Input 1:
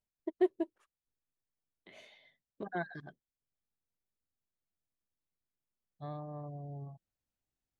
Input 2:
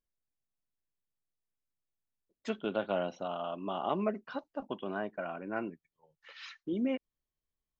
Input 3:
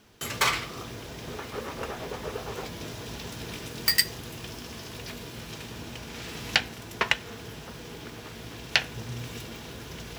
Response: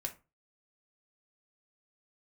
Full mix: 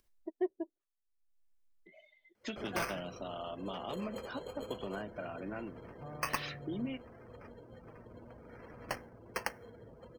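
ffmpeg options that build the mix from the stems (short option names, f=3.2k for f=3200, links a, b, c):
-filter_complex "[0:a]volume=-5dB[a];[1:a]acrossover=split=140|3000[b][c][d];[c]acompressor=threshold=-44dB:ratio=10[e];[b][e][d]amix=inputs=3:normalize=0,volume=0.5dB,asplit=2[f][g];[g]volume=-4dB[h];[2:a]equalizer=f=520:t=o:w=0.31:g=11.5,acrusher=samples=12:mix=1:aa=0.000001,adelay=2350,volume=-15dB,asplit=2[i][j];[j]volume=-10dB[k];[3:a]atrim=start_sample=2205[l];[h][k]amix=inputs=2:normalize=0[m];[m][l]afir=irnorm=-1:irlink=0[n];[a][f][i][n]amix=inputs=4:normalize=0,afftdn=nr=24:nf=-54,acompressor=mode=upward:threshold=-52dB:ratio=2.5"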